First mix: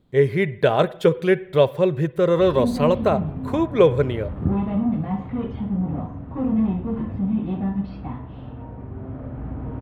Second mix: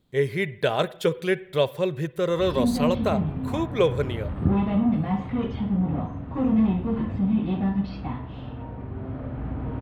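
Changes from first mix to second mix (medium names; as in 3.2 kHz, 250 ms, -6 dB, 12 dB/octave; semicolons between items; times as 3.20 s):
speech -6.5 dB; master: add treble shelf 2.5 kHz +11 dB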